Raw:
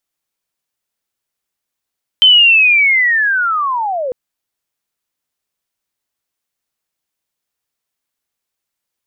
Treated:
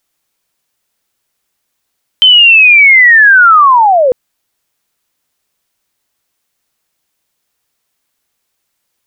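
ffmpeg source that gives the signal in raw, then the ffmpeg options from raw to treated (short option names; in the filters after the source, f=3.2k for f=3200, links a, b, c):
-f lavfi -i "aevalsrc='pow(10,(-3.5-13*t/1.9)/20)*sin(2*PI*(3100*t-2620*t*t/(2*1.9)))':d=1.9:s=44100"
-af "alimiter=level_in=11.5dB:limit=-1dB:release=50:level=0:latency=1"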